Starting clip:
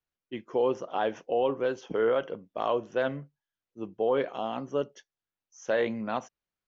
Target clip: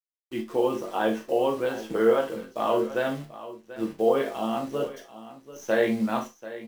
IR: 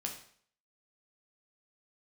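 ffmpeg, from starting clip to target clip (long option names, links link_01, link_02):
-filter_complex "[0:a]acrusher=bits=9:dc=4:mix=0:aa=0.000001,aecho=1:1:41|737:0.237|0.178[link_01];[1:a]atrim=start_sample=2205,atrim=end_sample=6174,asetrate=70560,aresample=44100[link_02];[link_01][link_02]afir=irnorm=-1:irlink=0,volume=7.5dB"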